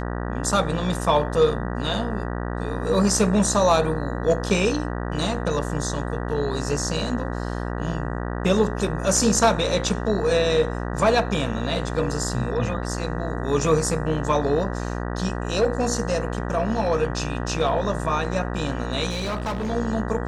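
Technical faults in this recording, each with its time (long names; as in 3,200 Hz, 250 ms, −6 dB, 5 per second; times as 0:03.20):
mains buzz 60 Hz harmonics 32 −28 dBFS
0:19.09–0:19.71: clipping −23 dBFS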